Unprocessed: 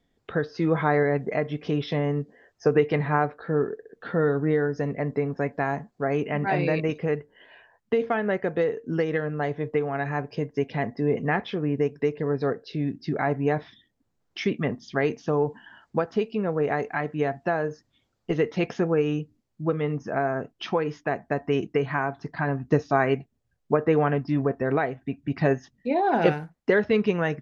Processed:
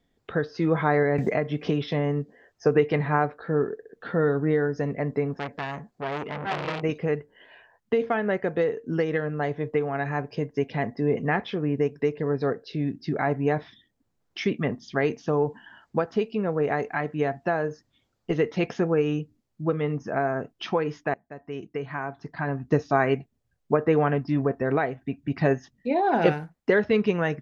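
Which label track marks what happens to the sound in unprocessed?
1.180000	1.880000	three bands compressed up and down depth 100%
5.380000	6.830000	transformer saturation saturates under 2.3 kHz
21.140000	22.900000	fade in, from -21.5 dB

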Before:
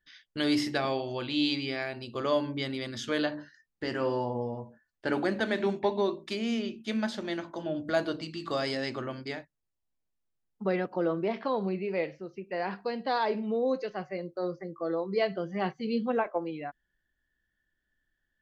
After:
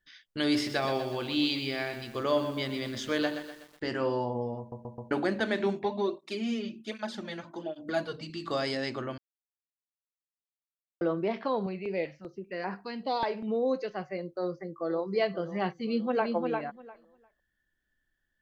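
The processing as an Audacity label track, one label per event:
0.420000	3.860000	bit-crushed delay 124 ms, feedback 55%, word length 8-bit, level -9.5 dB
4.590000	4.590000	stutter in place 0.13 s, 4 plays
5.830000	8.300000	cancelling through-zero flanger nulls at 1.3 Hz, depth 3.5 ms
9.180000	11.010000	mute
11.660000	13.480000	step-sequenced notch 5.1 Hz 280–3400 Hz
14.290000	15.060000	echo throw 530 ms, feedback 45%, level -14 dB
15.780000	16.340000	echo throw 350 ms, feedback 15%, level -4 dB

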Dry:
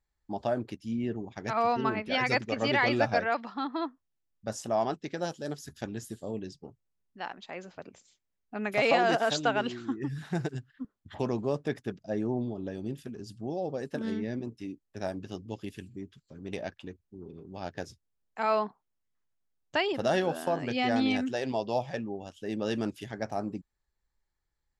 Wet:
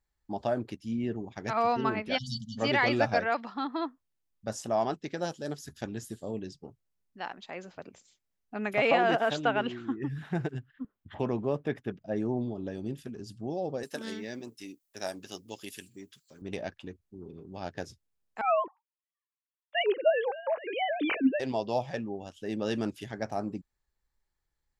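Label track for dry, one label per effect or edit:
2.180000	2.580000	spectral selection erased 240–2900 Hz
8.730000	12.160000	high-order bell 6.7 kHz -10 dB
13.830000	16.420000	RIAA curve recording
18.410000	21.400000	formants replaced by sine waves

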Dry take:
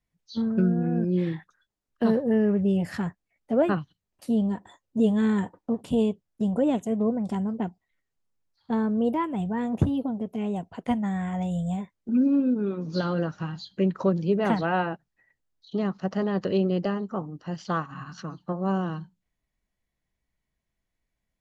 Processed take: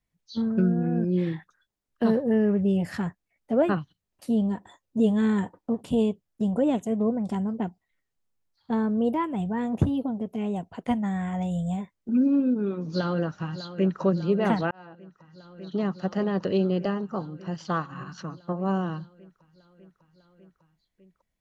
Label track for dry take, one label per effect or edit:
12.840000	14.010000	echo throw 600 ms, feedback 80%, level -13 dB
14.710000	15.800000	fade in

